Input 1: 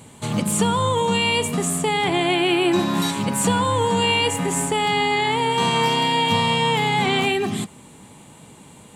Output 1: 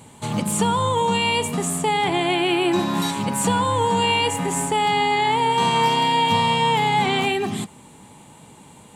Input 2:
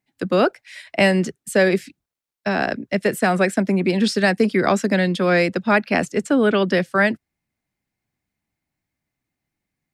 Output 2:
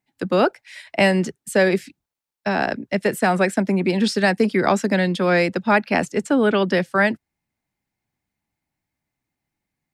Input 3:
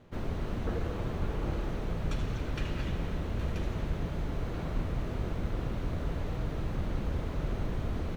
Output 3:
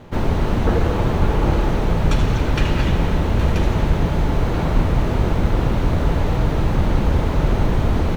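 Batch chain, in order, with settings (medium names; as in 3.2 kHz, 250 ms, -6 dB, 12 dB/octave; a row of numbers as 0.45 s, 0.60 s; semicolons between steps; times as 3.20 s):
peaking EQ 880 Hz +5.5 dB 0.28 oct; normalise loudness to -20 LUFS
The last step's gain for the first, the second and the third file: -1.5 dB, -1.0 dB, +15.5 dB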